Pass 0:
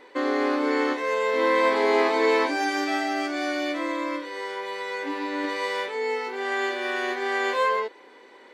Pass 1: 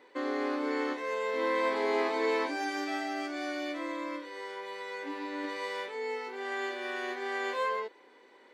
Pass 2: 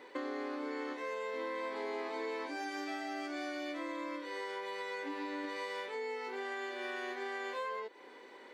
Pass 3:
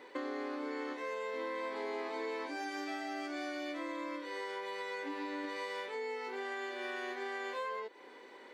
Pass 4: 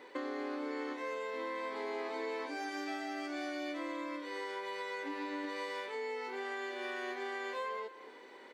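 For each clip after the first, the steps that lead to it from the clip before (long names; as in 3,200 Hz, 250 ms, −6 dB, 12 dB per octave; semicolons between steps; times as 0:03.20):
Chebyshev high-pass filter 150 Hz; level −7.5 dB
downward compressor 6 to 1, threshold −42 dBFS, peak gain reduction 15.5 dB; level +4.5 dB
no processing that can be heard
single-tap delay 238 ms −15.5 dB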